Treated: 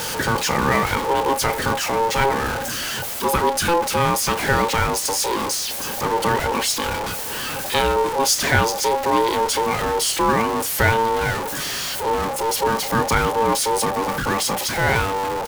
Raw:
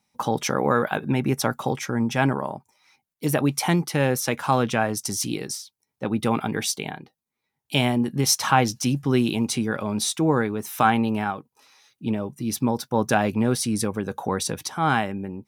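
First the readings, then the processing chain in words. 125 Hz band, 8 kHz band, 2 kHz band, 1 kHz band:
−1.0 dB, +5.5 dB, +7.0 dB, +6.5 dB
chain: converter with a step at zero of −19.5 dBFS
ring modulation 680 Hz
double-tracking delay 32 ms −13.5 dB
level +2 dB

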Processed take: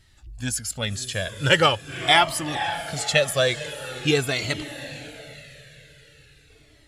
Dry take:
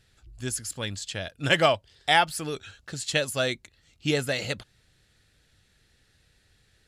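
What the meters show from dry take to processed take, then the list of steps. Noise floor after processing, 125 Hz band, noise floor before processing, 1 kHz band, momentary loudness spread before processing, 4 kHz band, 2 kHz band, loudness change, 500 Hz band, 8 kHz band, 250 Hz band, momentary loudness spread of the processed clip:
−55 dBFS, +5.0 dB, −66 dBFS, +3.5 dB, 14 LU, +5.5 dB, +4.5 dB, +4.5 dB, +4.0 dB, +5.0 dB, +3.5 dB, 17 LU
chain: feedback delay with all-pass diffusion 510 ms, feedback 48%, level −12 dB
gain on a spectral selection 0:05.35–0:06.49, 230–1,300 Hz −8 dB
flanger whose copies keep moving one way falling 0.44 Hz
level +9 dB

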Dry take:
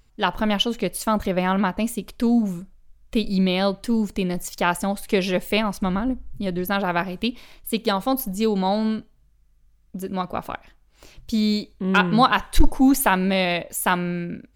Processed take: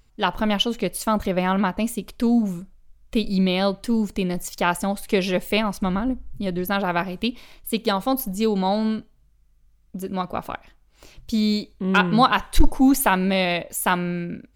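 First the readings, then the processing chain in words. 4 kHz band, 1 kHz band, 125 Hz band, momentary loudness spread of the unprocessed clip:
0.0 dB, 0.0 dB, 0.0 dB, 10 LU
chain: notch filter 1,700 Hz, Q 23

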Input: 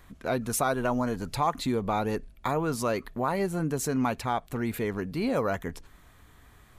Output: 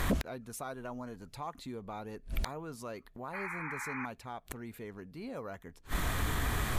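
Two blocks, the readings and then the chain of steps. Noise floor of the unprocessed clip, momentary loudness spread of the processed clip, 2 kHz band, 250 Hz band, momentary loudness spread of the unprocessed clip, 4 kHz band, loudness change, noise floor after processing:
−56 dBFS, 12 LU, −3.0 dB, −11.0 dB, 5 LU, −4.0 dB, −10.5 dB, −60 dBFS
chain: gate with flip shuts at −32 dBFS, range −38 dB
sine wavefolder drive 11 dB, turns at −31 dBFS
sound drawn into the spectrogram noise, 0:03.33–0:04.06, 800–2,500 Hz −49 dBFS
level +8.5 dB

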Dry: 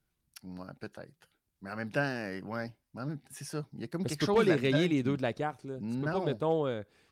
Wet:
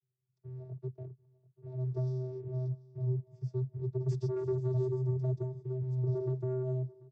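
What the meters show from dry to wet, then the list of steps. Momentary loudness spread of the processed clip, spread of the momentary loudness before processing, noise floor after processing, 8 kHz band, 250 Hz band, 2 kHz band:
13 LU, 19 LU, −83 dBFS, below −15 dB, −9.0 dB, below −30 dB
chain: Chebyshev band-stop filter 460–6,100 Hz, order 3
low-pass that shuts in the quiet parts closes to 1,300 Hz, open at −28.5 dBFS
high-shelf EQ 2,100 Hz +12 dB
downward compressor 2 to 1, threshold −36 dBFS, peak gain reduction 8 dB
leveller curve on the samples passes 2
channel vocoder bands 16, square 128 Hz
high-frequency loss of the air 85 metres
on a send: repeating echo 739 ms, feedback 34%, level −22 dB

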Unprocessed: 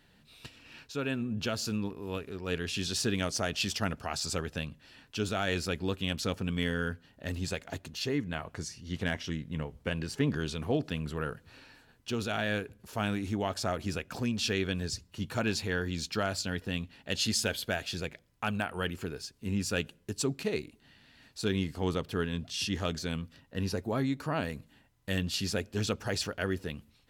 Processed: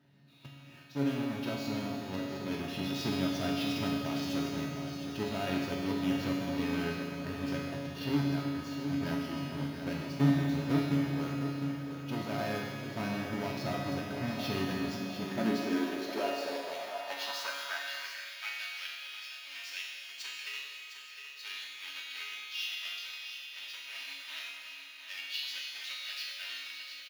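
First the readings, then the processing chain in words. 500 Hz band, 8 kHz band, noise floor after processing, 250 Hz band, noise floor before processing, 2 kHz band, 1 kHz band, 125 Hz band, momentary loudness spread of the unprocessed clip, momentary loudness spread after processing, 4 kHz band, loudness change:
−4.0 dB, −9.5 dB, −49 dBFS, +1.0 dB, −64 dBFS, −2.5 dB, −1.0 dB, −2.5 dB, 9 LU, 10 LU, −2.5 dB, −2.0 dB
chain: each half-wave held at its own peak
parametric band 8,100 Hz −12.5 dB 0.29 octaves
comb filter 3.2 ms, depth 44%
repeating echo 708 ms, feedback 57%, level −9 dB
four-comb reverb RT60 3.4 s, combs from 32 ms, DRR 2 dB
high-pass filter sweep 140 Hz → 2,600 Hz, 0:14.94–0:18.65
high-shelf EQ 5,700 Hz −10 dB
tuned comb filter 140 Hz, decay 0.95 s, harmonics all, mix 90%
level +5.5 dB

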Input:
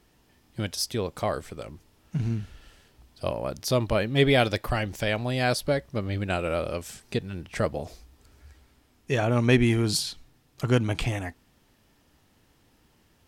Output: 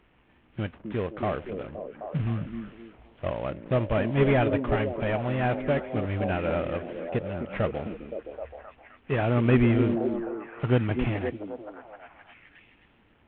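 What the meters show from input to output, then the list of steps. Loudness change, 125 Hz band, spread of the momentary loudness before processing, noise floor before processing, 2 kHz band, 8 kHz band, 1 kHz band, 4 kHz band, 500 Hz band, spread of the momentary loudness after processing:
−1.0 dB, 0.0 dB, 15 LU, −64 dBFS, −3.0 dB, below −40 dB, 0.0 dB, −12.5 dB, +0.5 dB, 17 LU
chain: variable-slope delta modulation 16 kbit/s
echo through a band-pass that steps 260 ms, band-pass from 260 Hz, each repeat 0.7 octaves, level −2 dB

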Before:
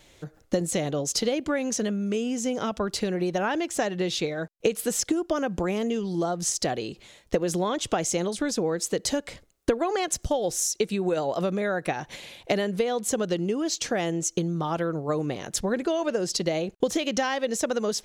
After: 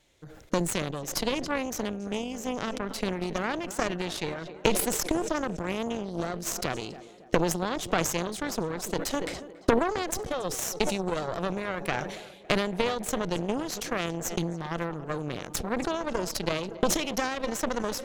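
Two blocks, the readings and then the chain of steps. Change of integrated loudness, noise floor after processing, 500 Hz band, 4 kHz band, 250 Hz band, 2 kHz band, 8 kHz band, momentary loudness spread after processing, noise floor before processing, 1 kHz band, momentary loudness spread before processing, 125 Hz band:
−3.0 dB, −49 dBFS, −4.0 dB, −2.0 dB, −3.5 dB, 0.0 dB, −4.5 dB, 6 LU, −58 dBFS, −0.5 dB, 4 LU, −2.0 dB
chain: tape delay 280 ms, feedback 80%, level −14 dB, low-pass 2,900 Hz
harmonic generator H 3 −11 dB, 4 −18 dB, 5 −29 dB, 7 −35 dB, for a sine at −9 dBFS
level that may fall only so fast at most 52 dB per second
level +3 dB

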